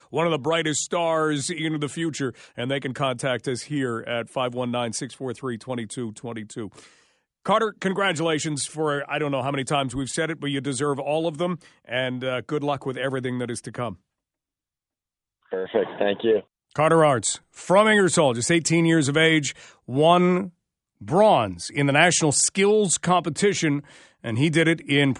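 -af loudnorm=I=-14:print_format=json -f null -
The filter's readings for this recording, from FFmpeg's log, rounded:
"input_i" : "-22.6",
"input_tp" : "-3.3",
"input_lra" : "8.8",
"input_thresh" : "-33.0",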